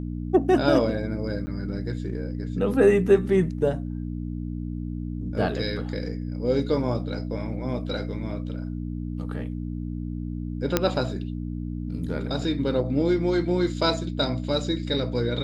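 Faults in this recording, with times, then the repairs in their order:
hum 60 Hz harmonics 5 -31 dBFS
1.46–1.47 s: dropout 10 ms
10.77 s: pop -5 dBFS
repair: de-click; de-hum 60 Hz, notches 5; interpolate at 1.46 s, 10 ms

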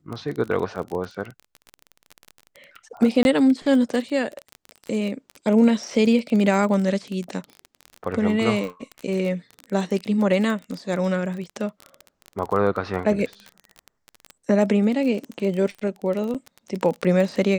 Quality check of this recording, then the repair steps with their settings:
crackle 21 per s -27 dBFS
3.23–3.25 s: dropout 21 ms
16.34–16.35 s: dropout 6.9 ms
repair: de-click; interpolate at 3.23 s, 21 ms; interpolate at 16.34 s, 6.9 ms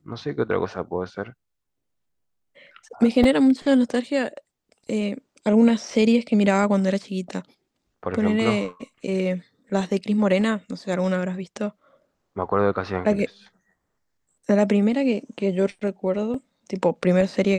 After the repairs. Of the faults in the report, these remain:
nothing left

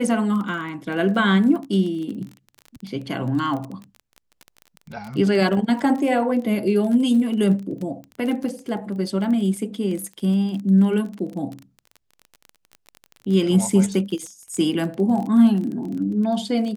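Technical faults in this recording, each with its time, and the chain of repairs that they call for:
crackle 23 per s -29 dBFS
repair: de-click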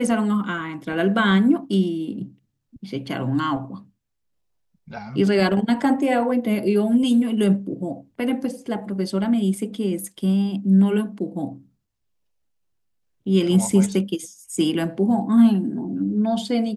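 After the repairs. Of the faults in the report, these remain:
nothing left

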